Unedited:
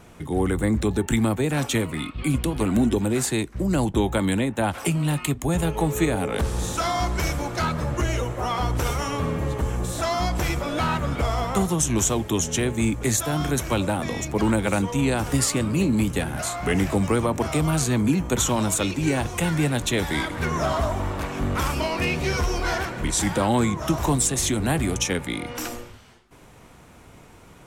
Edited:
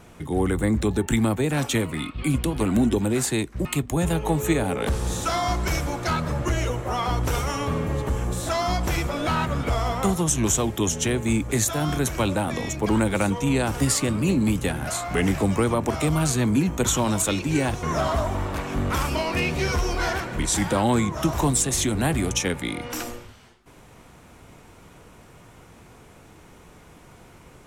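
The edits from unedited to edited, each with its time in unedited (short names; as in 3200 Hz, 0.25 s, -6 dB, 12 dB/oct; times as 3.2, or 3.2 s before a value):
3.65–5.17 cut
19.35–20.48 cut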